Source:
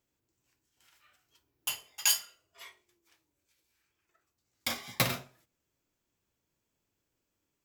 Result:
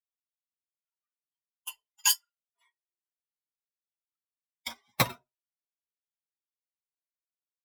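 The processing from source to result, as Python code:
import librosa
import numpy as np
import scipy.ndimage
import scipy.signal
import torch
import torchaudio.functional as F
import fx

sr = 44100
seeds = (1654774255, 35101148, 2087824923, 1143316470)

y = fx.bin_expand(x, sr, power=2.0)
y = fx.peak_eq(y, sr, hz=970.0, db=9.5, octaves=0.33)
y = fx.upward_expand(y, sr, threshold_db=-46.0, expansion=1.5)
y = F.gain(torch.from_numpy(y), 4.5).numpy()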